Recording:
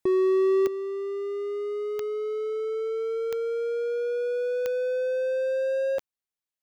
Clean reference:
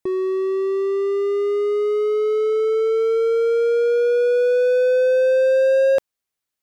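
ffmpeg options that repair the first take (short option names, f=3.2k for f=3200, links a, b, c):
-af "adeclick=t=4,asetnsamples=n=441:p=0,asendcmd='0.67 volume volume 10.5dB',volume=0dB"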